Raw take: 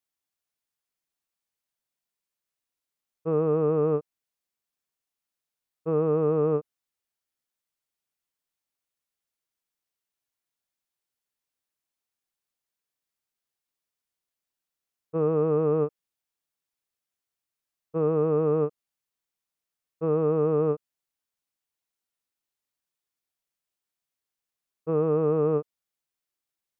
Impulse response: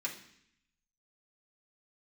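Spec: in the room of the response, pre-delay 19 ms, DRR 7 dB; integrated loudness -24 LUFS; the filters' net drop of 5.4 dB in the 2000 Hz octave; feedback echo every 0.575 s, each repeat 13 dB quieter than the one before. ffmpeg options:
-filter_complex "[0:a]equalizer=f=2k:t=o:g=-8.5,aecho=1:1:575|1150|1725:0.224|0.0493|0.0108,asplit=2[a][b];[1:a]atrim=start_sample=2205,adelay=19[c];[b][c]afir=irnorm=-1:irlink=0,volume=-9dB[d];[a][d]amix=inputs=2:normalize=0,volume=3dB"

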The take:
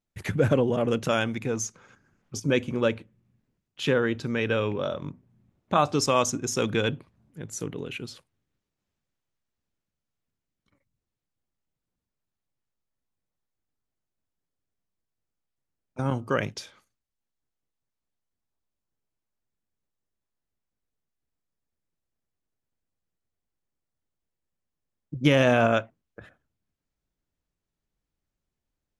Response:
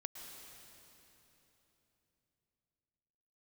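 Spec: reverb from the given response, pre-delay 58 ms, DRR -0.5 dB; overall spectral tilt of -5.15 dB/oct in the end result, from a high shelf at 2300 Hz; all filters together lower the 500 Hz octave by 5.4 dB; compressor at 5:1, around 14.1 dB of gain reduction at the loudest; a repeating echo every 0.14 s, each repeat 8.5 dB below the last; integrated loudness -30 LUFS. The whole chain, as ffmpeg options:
-filter_complex "[0:a]equalizer=f=500:t=o:g=-6,highshelf=f=2.3k:g=-7,acompressor=threshold=-34dB:ratio=5,aecho=1:1:140|280|420|560:0.376|0.143|0.0543|0.0206,asplit=2[a][b];[1:a]atrim=start_sample=2205,adelay=58[c];[b][c]afir=irnorm=-1:irlink=0,volume=3dB[d];[a][d]amix=inputs=2:normalize=0,volume=6.5dB"

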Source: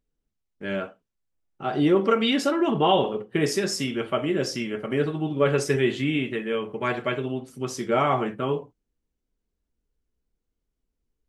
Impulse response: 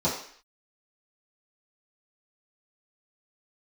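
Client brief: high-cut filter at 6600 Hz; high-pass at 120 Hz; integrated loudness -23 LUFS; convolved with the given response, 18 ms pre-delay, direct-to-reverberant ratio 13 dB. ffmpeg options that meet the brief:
-filter_complex "[0:a]highpass=120,lowpass=6.6k,asplit=2[a][b];[1:a]atrim=start_sample=2205,adelay=18[c];[b][c]afir=irnorm=-1:irlink=0,volume=-25dB[d];[a][d]amix=inputs=2:normalize=0,volume=2dB"

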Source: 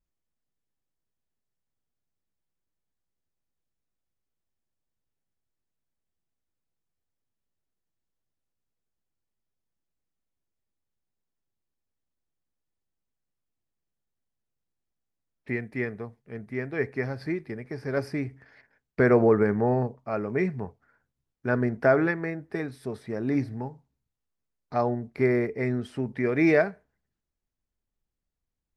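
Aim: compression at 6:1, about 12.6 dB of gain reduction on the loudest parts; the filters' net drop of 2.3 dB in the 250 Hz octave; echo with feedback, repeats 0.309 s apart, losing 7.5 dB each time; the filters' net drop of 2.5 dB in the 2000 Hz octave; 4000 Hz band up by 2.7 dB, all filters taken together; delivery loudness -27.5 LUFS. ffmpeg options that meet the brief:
-af "equalizer=f=250:t=o:g=-3,equalizer=f=2k:t=o:g=-4,equalizer=f=4k:t=o:g=4.5,acompressor=threshold=-30dB:ratio=6,aecho=1:1:309|618|927|1236|1545:0.422|0.177|0.0744|0.0312|0.0131,volume=8dB"

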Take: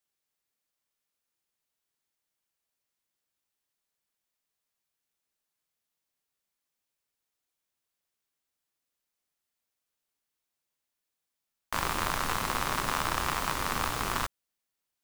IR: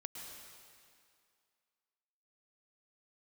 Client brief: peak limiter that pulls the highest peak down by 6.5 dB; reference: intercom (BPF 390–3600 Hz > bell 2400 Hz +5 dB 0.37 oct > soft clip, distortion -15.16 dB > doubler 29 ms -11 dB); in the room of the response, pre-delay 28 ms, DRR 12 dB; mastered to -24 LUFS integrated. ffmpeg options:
-filter_complex "[0:a]alimiter=limit=-18.5dB:level=0:latency=1,asplit=2[a][b];[1:a]atrim=start_sample=2205,adelay=28[c];[b][c]afir=irnorm=-1:irlink=0,volume=-9.5dB[d];[a][d]amix=inputs=2:normalize=0,highpass=390,lowpass=3.6k,equalizer=f=2.4k:t=o:w=0.37:g=5,asoftclip=threshold=-24.5dB,asplit=2[e][f];[f]adelay=29,volume=-11dB[g];[e][g]amix=inputs=2:normalize=0,volume=12dB"

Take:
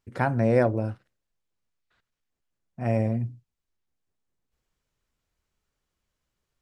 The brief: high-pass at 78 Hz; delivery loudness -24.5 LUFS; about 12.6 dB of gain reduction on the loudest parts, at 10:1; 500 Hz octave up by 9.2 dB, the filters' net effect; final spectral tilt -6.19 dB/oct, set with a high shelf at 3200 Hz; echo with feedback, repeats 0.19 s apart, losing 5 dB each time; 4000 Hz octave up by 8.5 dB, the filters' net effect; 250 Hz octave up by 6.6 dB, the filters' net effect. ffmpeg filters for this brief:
-af "highpass=78,equalizer=f=250:t=o:g=5.5,equalizer=f=500:t=o:g=9,highshelf=f=3.2k:g=5.5,equalizer=f=4k:t=o:g=7,acompressor=threshold=-20dB:ratio=10,aecho=1:1:190|380|570|760|950|1140|1330:0.562|0.315|0.176|0.0988|0.0553|0.031|0.0173,volume=2dB"

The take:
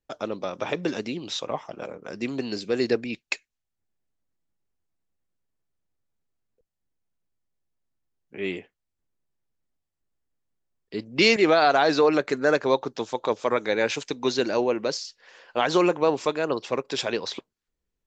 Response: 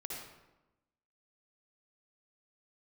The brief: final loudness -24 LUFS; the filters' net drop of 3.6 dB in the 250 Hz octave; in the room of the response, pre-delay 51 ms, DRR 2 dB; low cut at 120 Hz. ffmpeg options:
-filter_complex "[0:a]highpass=120,equalizer=f=250:t=o:g=-5,asplit=2[a][b];[1:a]atrim=start_sample=2205,adelay=51[c];[b][c]afir=irnorm=-1:irlink=0,volume=-1.5dB[d];[a][d]amix=inputs=2:normalize=0,volume=-0.5dB"

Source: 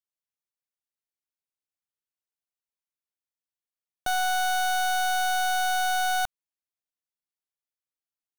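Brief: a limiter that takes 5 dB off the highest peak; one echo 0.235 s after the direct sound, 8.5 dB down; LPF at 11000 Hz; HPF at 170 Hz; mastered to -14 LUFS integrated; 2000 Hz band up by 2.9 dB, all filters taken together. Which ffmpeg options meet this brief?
-af "highpass=170,lowpass=11k,equalizer=f=2k:t=o:g=5,alimiter=limit=-22dB:level=0:latency=1,aecho=1:1:235:0.376,volume=13.5dB"

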